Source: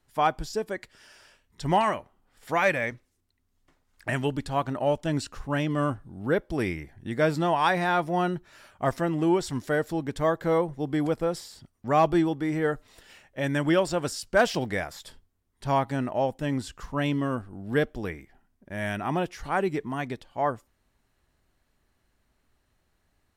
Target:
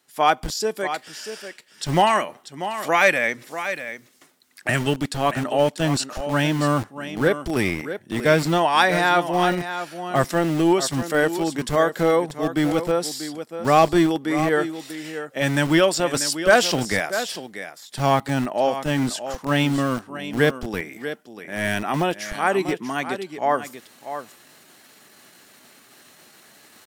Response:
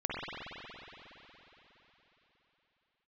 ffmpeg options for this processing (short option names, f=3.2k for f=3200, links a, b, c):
-filter_complex "[0:a]highshelf=f=2.3k:g=8.5,bandreject=f=970:w=19,areverse,acompressor=mode=upward:threshold=-37dB:ratio=2.5,areverse,atempo=0.87,acrossover=split=160[a][b];[a]acrusher=bits=5:mix=0:aa=0.000001[c];[b]aecho=1:1:640:0.299[d];[c][d]amix=inputs=2:normalize=0,volume=4.5dB"